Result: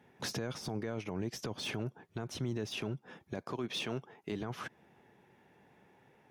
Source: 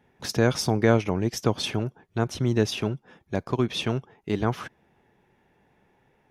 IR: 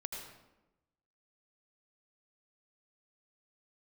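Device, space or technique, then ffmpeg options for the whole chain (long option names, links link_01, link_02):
podcast mastering chain: -filter_complex "[0:a]asettb=1/sr,asplit=3[link_01][link_02][link_03];[link_01]atrim=end=3.374[link_04];[link_02]atrim=start=3.37:end=4.32,asetpts=PTS-STARTPTS,afade=type=in:duration=0.004:curve=qsin,afade=type=out:start_time=0.946:duration=0.004:curve=qsin,highpass=frequency=200:poles=1[link_05];[link_03]atrim=start=4.316[link_06];[link_04][link_05]acrossfade=duration=0.004:curve1=hsin:curve2=qsin[link_07];[link_07][link_06]acrossfade=duration=0.004:curve1=qsin:curve2=hsin,highpass=100,deesser=0.75,acompressor=threshold=-33dB:ratio=3,alimiter=level_in=4.5dB:limit=-24dB:level=0:latency=1:release=11,volume=-4.5dB,volume=1dB" -ar 48000 -c:a libmp3lame -b:a 128k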